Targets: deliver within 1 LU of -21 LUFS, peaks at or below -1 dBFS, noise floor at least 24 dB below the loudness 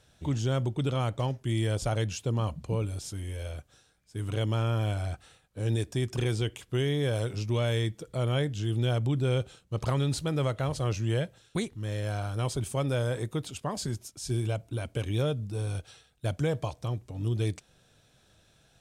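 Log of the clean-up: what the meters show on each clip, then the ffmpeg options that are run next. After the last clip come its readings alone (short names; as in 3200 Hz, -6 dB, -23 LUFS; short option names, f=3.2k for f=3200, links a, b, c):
loudness -31.0 LUFS; peak -18.0 dBFS; loudness target -21.0 LUFS
-> -af "volume=10dB"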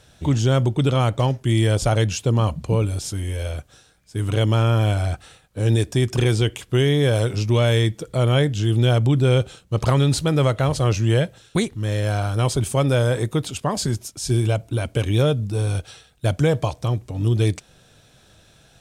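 loudness -21.0 LUFS; peak -8.0 dBFS; noise floor -55 dBFS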